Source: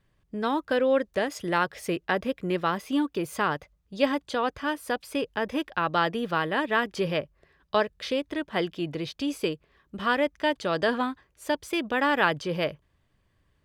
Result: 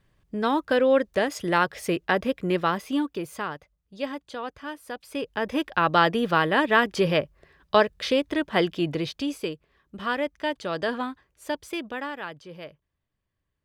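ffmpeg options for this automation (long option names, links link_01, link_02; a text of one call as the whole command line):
ffmpeg -i in.wav -af "volume=15dB,afade=type=out:start_time=2.56:duration=0.98:silence=0.316228,afade=type=in:start_time=4.95:duration=0.92:silence=0.251189,afade=type=out:start_time=8.92:duration=0.49:silence=0.421697,afade=type=out:start_time=11.68:duration=0.5:silence=0.298538" out.wav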